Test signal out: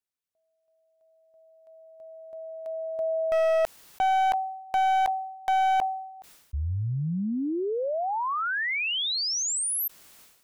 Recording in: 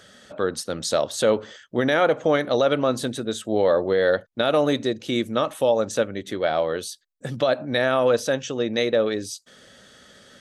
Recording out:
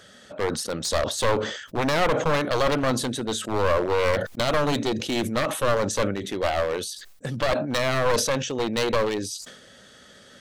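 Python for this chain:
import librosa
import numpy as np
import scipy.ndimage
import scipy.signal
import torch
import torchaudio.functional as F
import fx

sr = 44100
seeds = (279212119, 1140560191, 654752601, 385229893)

y = np.minimum(x, 2.0 * 10.0 ** (-20.5 / 20.0) - x)
y = fx.sustainer(y, sr, db_per_s=67.0)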